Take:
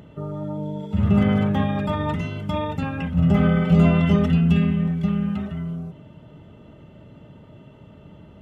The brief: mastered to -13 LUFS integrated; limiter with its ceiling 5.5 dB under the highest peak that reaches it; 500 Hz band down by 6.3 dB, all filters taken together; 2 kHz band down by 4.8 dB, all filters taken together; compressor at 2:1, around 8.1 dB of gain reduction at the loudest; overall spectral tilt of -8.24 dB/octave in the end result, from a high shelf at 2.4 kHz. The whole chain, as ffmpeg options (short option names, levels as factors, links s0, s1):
-af "equalizer=f=500:t=o:g=-8,equalizer=f=2000:t=o:g=-4,highshelf=f=2400:g=-3.5,acompressor=threshold=0.0398:ratio=2,volume=7.08,alimiter=limit=0.631:level=0:latency=1"